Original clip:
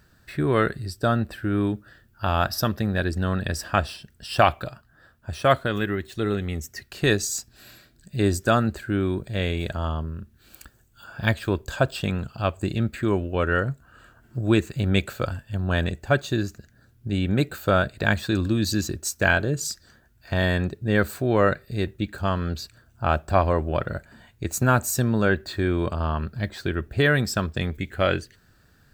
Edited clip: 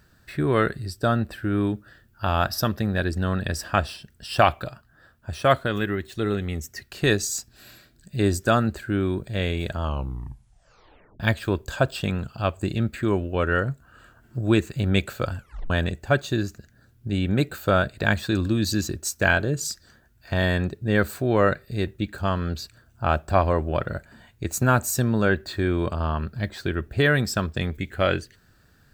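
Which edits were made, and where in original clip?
0:09.81: tape stop 1.39 s
0:15.38: tape stop 0.32 s

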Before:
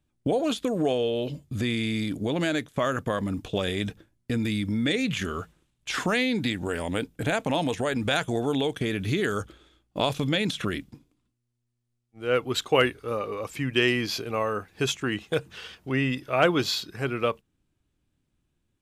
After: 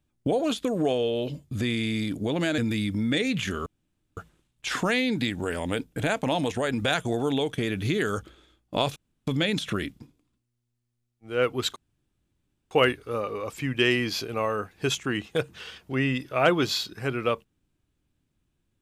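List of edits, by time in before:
0:02.58–0:04.32: remove
0:05.40: splice in room tone 0.51 s
0:10.19: splice in room tone 0.31 s
0:12.68: splice in room tone 0.95 s

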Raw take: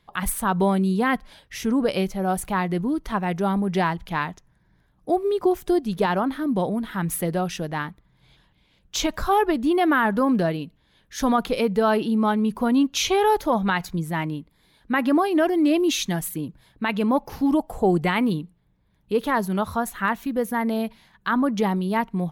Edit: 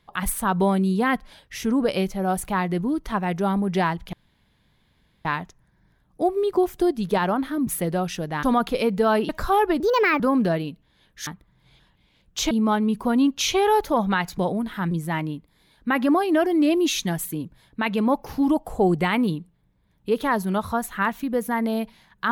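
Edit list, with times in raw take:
0:04.13: splice in room tone 1.12 s
0:06.55–0:07.08: move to 0:13.94
0:07.84–0:09.08: swap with 0:11.21–0:12.07
0:09.59–0:10.14: play speed 138%

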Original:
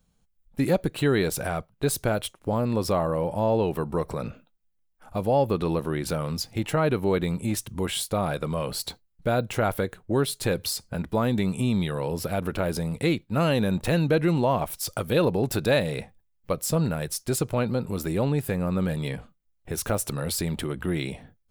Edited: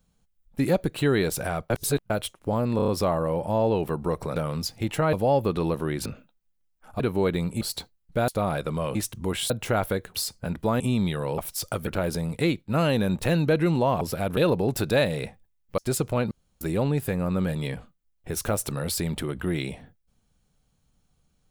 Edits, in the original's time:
0:01.70–0:02.10: reverse
0:02.76: stutter 0.03 s, 5 plays
0:04.24–0:05.18: swap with 0:06.11–0:06.88
0:07.49–0:08.04: swap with 0:08.71–0:09.38
0:10.02–0:10.63: remove
0:11.29–0:11.55: remove
0:12.13–0:12.49: swap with 0:14.63–0:15.12
0:16.53–0:17.19: remove
0:17.72–0:18.02: fill with room tone

